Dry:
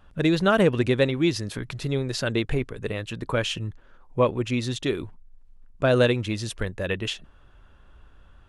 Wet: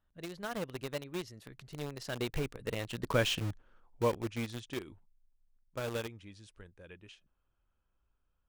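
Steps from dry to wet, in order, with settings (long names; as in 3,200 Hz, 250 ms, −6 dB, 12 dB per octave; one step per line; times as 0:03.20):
source passing by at 0:03.24, 22 m/s, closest 11 metres
in parallel at −4 dB: bit reduction 5 bits
on the sum: level −8 dB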